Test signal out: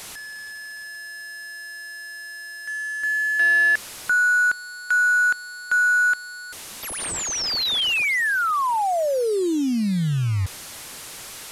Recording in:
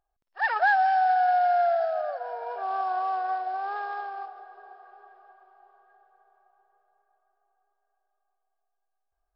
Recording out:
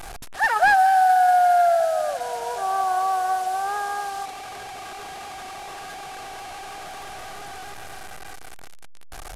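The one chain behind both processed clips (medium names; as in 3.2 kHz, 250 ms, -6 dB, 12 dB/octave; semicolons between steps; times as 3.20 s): one-bit delta coder 64 kbps, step -36 dBFS; trim +5.5 dB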